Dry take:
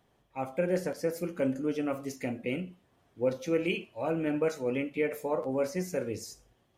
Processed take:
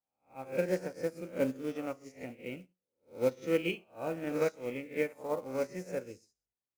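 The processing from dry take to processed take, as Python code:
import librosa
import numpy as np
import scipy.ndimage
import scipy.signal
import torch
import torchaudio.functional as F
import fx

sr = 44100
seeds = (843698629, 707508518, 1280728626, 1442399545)

y = fx.spec_swells(x, sr, rise_s=0.7)
y = scipy.signal.sosfilt(scipy.signal.butter(2, 9500.0, 'lowpass', fs=sr, output='sos'), y)
y = fx.quant_companded(y, sr, bits=6)
y = y + 10.0 ** (-17.0 / 20.0) * np.pad(y, (int(121 * sr / 1000.0), 0))[:len(y)]
y = fx.upward_expand(y, sr, threshold_db=-48.0, expansion=2.5)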